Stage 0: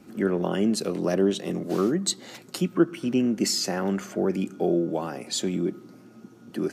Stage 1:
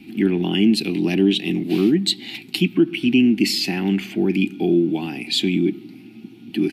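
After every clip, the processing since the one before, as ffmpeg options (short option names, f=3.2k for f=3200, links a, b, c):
-af "firequalizer=gain_entry='entry(140,0);entry(310,6);entry(540,-21);entry(780,-3);entry(1200,-16);entry(2400,13);entry(4200,5);entry(6300,-11);entry(11000,0)':delay=0.05:min_phase=1,alimiter=level_in=11dB:limit=-1dB:release=50:level=0:latency=1,volume=-6dB"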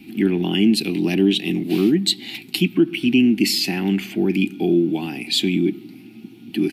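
-af "highshelf=f=9.9k:g=8.5"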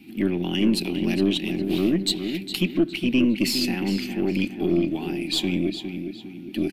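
-filter_complex "[0:a]asplit=2[a][b];[b]adelay=409,lowpass=f=3.6k:p=1,volume=-7.5dB,asplit=2[c][d];[d]adelay=409,lowpass=f=3.6k:p=1,volume=0.43,asplit=2[e][f];[f]adelay=409,lowpass=f=3.6k:p=1,volume=0.43,asplit=2[g][h];[h]adelay=409,lowpass=f=3.6k:p=1,volume=0.43,asplit=2[i][j];[j]adelay=409,lowpass=f=3.6k:p=1,volume=0.43[k];[a][c][e][g][i][k]amix=inputs=6:normalize=0,aeval=exprs='0.631*(cos(1*acos(clip(val(0)/0.631,-1,1)))-cos(1*PI/2))+0.0398*(cos(4*acos(clip(val(0)/0.631,-1,1)))-cos(4*PI/2))+0.00398*(cos(8*acos(clip(val(0)/0.631,-1,1)))-cos(8*PI/2))':c=same,volume=-5dB"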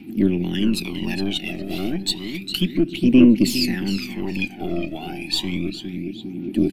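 -af "aphaser=in_gain=1:out_gain=1:delay=1.6:decay=0.67:speed=0.31:type=triangular,volume=-1dB"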